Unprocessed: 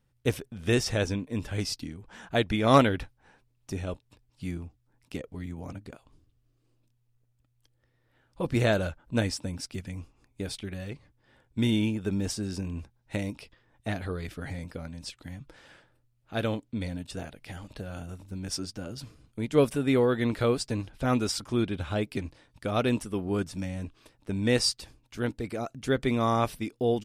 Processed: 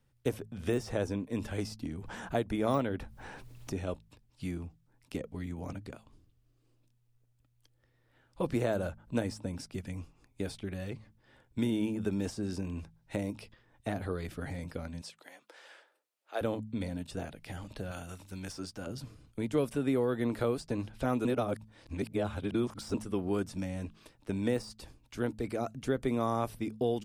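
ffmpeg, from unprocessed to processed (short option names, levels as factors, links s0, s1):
-filter_complex "[0:a]asettb=1/sr,asplit=3[s0][s1][s2];[s0]atrim=end=1.854[s3];[s1]atrim=start=1.85:end=3.8,asetpts=PTS-STARTPTS,afade=t=in:d=0.004:c=qsin,afade=t=out:st=1.946:d=0.004:c=qsin,acompressor=mode=upward:threshold=0.0282:ratio=2.5:attack=3.2:release=140:knee=2.83:detection=peak[s4];[s2]atrim=start=3.796[s5];[s3][s4]acrossfade=d=0.004:c1=hsin:c2=qsin[s6];[s6][s5]acrossfade=d=0.004:c1=qsin:c2=hsin,asettb=1/sr,asplit=3[s7][s8][s9];[s7]atrim=end=15.014[s10];[s8]atrim=start=15.01:end=16.41,asetpts=PTS-STARTPTS,afade=t=in:d=0.004:c=qsin,afade=t=out:st=1.396:d=0.004:c=qsin,highpass=f=430:w=0.5412,highpass=f=430:w=1.3066[s11];[s9]atrim=start=16.406[s12];[s10][s11]acrossfade=d=0.004:c1=hsin:c2=qsin[s13];[s13][s12]acrossfade=d=0.004:c1=qsin:c2=hsin,asettb=1/sr,asplit=3[s14][s15][s16];[s14]atrim=end=17.914[s17];[s15]atrim=start=17.91:end=18.87,asetpts=PTS-STARTPTS,afade=t=in:d=0.004:c=qsin,afade=t=out:st=0.956:d=0.004:c=qsin,tiltshelf=f=730:g=-6[s18];[s16]atrim=start=18.866[s19];[s17][s18]acrossfade=d=0.004:c1=hsin:c2=qsin[s20];[s20][s19]acrossfade=d=0.004:c1=qsin:c2=hsin,asplit=3[s21][s22][s23];[s21]atrim=end=21.252[s24];[s22]atrim=start=21.248:end=22.942,asetpts=PTS-STARTPTS,areverse[s25];[s23]atrim=start=22.938[s26];[s24][s25]acrossfade=d=0.004:c1=hsin:c2=hsin[s27];[s27][s26]acrossfade=d=0.004:c1=hsin:c2=hsin,deesser=0.65,bandreject=f=54.11:t=h:w=4,bandreject=f=108.22:t=h:w=4,bandreject=f=162.33:t=h:w=4,bandreject=f=216.44:t=h:w=4,acrossover=split=220|1300|7700[s28][s29][s30][s31];[s28]acompressor=threshold=0.0126:ratio=4[s32];[s29]acompressor=threshold=0.0398:ratio=4[s33];[s30]acompressor=threshold=0.00355:ratio=4[s34];[s31]acompressor=threshold=0.00178:ratio=4[s35];[s32][s33][s34][s35]amix=inputs=4:normalize=0"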